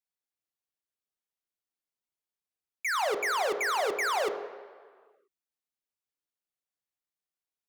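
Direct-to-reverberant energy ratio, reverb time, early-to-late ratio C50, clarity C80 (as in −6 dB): 7.0 dB, 1.7 s, 10.0 dB, 11.5 dB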